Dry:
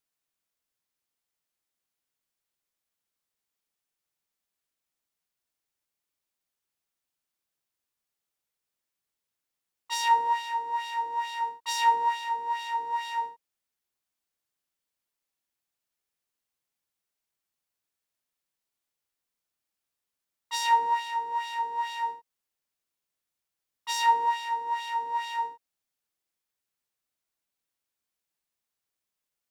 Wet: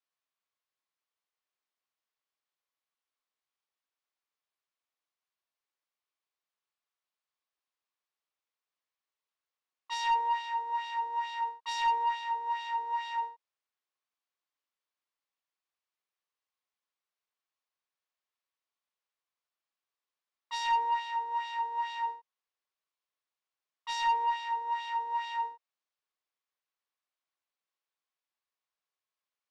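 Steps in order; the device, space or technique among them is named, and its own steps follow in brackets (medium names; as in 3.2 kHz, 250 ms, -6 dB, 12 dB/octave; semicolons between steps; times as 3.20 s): intercom (band-pass 440–4500 Hz; peaking EQ 1.1 kHz +6.5 dB 0.22 oct; saturation -19 dBFS, distortion -14 dB); trim -3 dB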